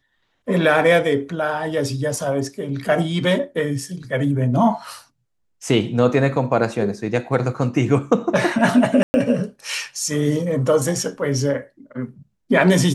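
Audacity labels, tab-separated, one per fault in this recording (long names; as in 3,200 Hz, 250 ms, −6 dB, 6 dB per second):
9.030000	9.140000	drop-out 110 ms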